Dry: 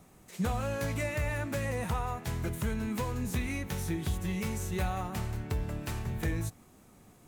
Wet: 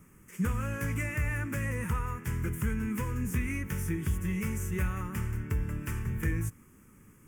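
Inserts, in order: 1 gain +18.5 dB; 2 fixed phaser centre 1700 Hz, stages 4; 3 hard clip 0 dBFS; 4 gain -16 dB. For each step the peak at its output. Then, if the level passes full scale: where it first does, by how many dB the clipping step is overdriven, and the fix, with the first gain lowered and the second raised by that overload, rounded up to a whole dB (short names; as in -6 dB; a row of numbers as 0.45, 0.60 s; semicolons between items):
-2.0, -3.0, -3.0, -19.0 dBFS; no overload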